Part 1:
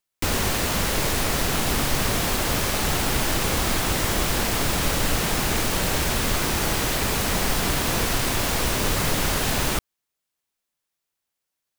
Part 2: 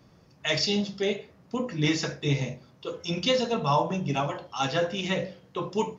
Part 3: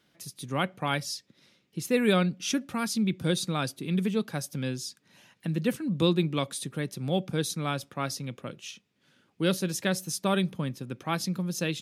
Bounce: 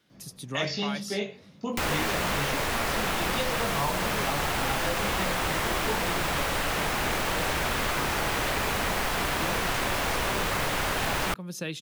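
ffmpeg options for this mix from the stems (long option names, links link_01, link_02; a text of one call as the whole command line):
ffmpeg -i stem1.wav -i stem2.wav -i stem3.wav -filter_complex "[0:a]dynaudnorm=framelen=160:gausssize=3:maxgain=11.5dB,adelay=1550,volume=-5.5dB[link_01];[1:a]equalizer=frequency=200:width=1.5:gain=7,flanger=delay=19:depth=2.3:speed=2,adelay=100,volume=2.5dB[link_02];[2:a]alimiter=limit=-19.5dB:level=0:latency=1,volume=-0.5dB[link_03];[link_01][link_02][link_03]amix=inputs=3:normalize=0,acrossover=split=500|3100[link_04][link_05][link_06];[link_04]acompressor=threshold=-33dB:ratio=4[link_07];[link_05]acompressor=threshold=-27dB:ratio=4[link_08];[link_06]acompressor=threshold=-38dB:ratio=4[link_09];[link_07][link_08][link_09]amix=inputs=3:normalize=0" out.wav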